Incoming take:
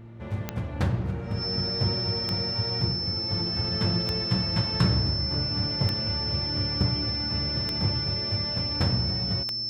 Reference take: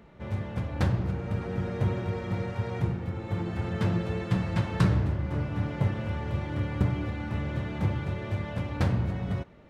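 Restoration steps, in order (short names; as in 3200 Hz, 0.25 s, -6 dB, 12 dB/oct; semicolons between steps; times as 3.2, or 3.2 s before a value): de-click; de-hum 114.1 Hz, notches 3; notch 5300 Hz, Q 30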